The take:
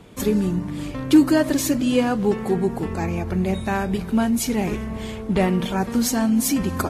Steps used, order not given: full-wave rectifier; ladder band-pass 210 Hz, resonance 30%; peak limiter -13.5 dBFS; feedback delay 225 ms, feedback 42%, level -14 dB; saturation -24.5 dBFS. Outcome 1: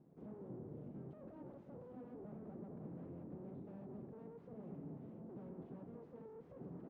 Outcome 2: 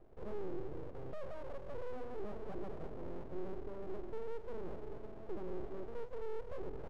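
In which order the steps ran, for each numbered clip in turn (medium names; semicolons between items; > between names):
peak limiter > saturation > feedback delay > full-wave rectifier > ladder band-pass; peak limiter > feedback delay > saturation > ladder band-pass > full-wave rectifier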